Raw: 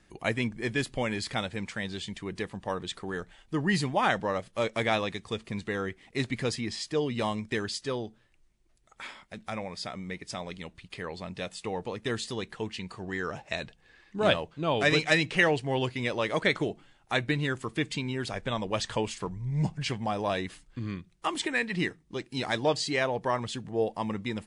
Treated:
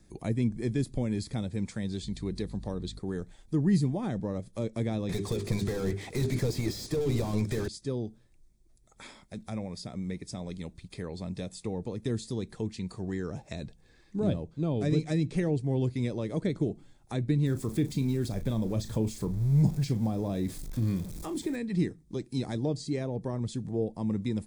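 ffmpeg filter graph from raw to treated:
-filter_complex "[0:a]asettb=1/sr,asplit=3[s0][s1][s2];[s0]atrim=end=2.034[s3];[s1]atrim=start=2.03:end=2.99,asetpts=PTS-STARTPTS,afade=t=in:d=0.004:c=qsin,afade=t=out:st=0.956:d=0.004:c=qsin,aeval=exprs='val(0)+0.00398*(sin(2*PI*50*n/s)+sin(2*PI*2*50*n/s)/2+sin(2*PI*3*50*n/s)/3+sin(2*PI*4*50*n/s)/4+sin(2*PI*5*50*n/s)/5)':c=same,equalizer=f=4200:t=o:w=0.38:g=10[s4];[s2]atrim=start=2.986[s5];[s3][s4]acrossfade=d=0.004:c1=hsin:c2=qsin[s6];[s6][s5]acrossfade=d=0.004:c1=qsin:c2=hsin,asettb=1/sr,asplit=3[s7][s8][s9];[s7]atrim=end=5.094[s10];[s8]atrim=start=5.09:end=7.68,asetpts=PTS-STARTPTS,afade=t=in:d=0.004:c=qsin,afade=t=out:st=2.586:d=0.004:c=qsin,equalizer=f=230:t=o:w=0.72:g=-11.5,bandreject=f=50:t=h:w=6,bandreject=f=100:t=h:w=6,bandreject=f=150:t=h:w=6,bandreject=f=200:t=h:w=6,bandreject=f=250:t=h:w=6,bandreject=f=300:t=h:w=6,bandreject=f=350:t=h:w=6,bandreject=f=400:t=h:w=6,asplit=2[s11][s12];[s12]highpass=f=720:p=1,volume=56.2,asoftclip=type=tanh:threshold=0.119[s13];[s11][s13]amix=inputs=2:normalize=0,lowpass=f=4200:p=1,volume=0.501[s14];[s9]atrim=start=7.676[s15];[s10][s14]acrossfade=d=0.004:c1=hsin:c2=qsin[s16];[s16][s15]acrossfade=d=0.004:c1=qsin:c2=hsin,asettb=1/sr,asplit=3[s17][s18][s19];[s17]atrim=end=17.464[s20];[s18]atrim=start=17.46:end=21.56,asetpts=PTS-STARTPTS,afade=t=in:d=0.004:c=qsin,afade=t=out:st=4.096:d=0.004:c=qsin,aeval=exprs='val(0)+0.5*0.0112*sgn(val(0))':c=same,asplit=2[s21][s22];[s22]adelay=36,volume=0.251[s23];[s21][s23]amix=inputs=2:normalize=0,atrim=end_sample=180810[s24];[s19]atrim=start=21.556[s25];[s20][s24]acrossfade=d=0.004:c1=hsin:c2=qsin[s26];[s26][s25]acrossfade=d=0.004:c1=qsin:c2=hsin,equalizer=f=1600:w=0.42:g=-14.5,bandreject=f=2900:w=5.3,acrossover=split=420[s27][s28];[s28]acompressor=threshold=0.00398:ratio=4[s29];[s27][s29]amix=inputs=2:normalize=0,volume=2"

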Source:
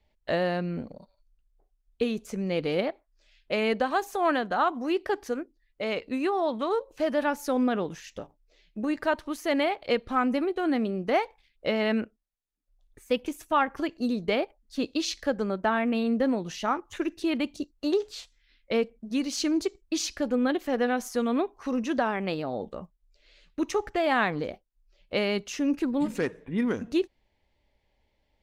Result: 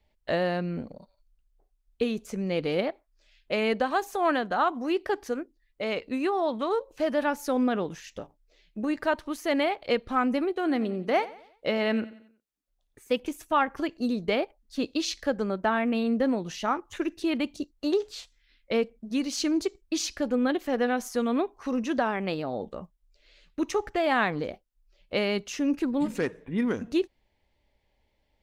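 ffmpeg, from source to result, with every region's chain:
-filter_complex "[0:a]asettb=1/sr,asplit=3[s0][s1][s2];[s0]atrim=end=10.534[s3];[s1]atrim=start=10.53:end=13.2,asetpts=PTS-STARTPTS,afade=t=in:d=0.004:c=qsin,afade=t=out:st=2.666:d=0.004:c=qsin,highpass=f=100:p=1,aecho=1:1:90|180|270|360:0.126|0.0554|0.0244|0.0107,atrim=end_sample=117747[s4];[s2]atrim=start=13.196[s5];[s3][s4]acrossfade=d=0.004:c1=hsin:c2=qsin[s6];[s6][s5]acrossfade=d=0.004:c1=qsin:c2=hsin"

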